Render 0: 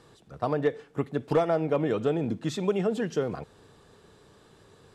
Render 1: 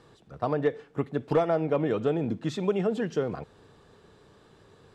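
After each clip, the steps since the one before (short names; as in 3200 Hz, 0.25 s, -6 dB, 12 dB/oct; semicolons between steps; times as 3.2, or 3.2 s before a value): high shelf 7300 Hz -10.5 dB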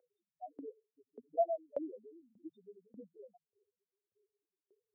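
loudest bins only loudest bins 1; fixed phaser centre 690 Hz, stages 8; LFO high-pass saw up 1.7 Hz 500–1900 Hz; gain +2 dB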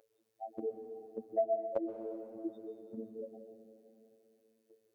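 compressor 3:1, threshold -44 dBFS, peak gain reduction 14 dB; robotiser 111 Hz; on a send at -7 dB: reverb RT60 2.9 s, pre-delay 0.118 s; on the sum: gain +12.5 dB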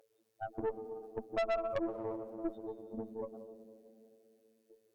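tube stage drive 36 dB, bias 0.8; gain +7 dB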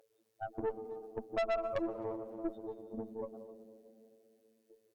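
speakerphone echo 0.26 s, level -21 dB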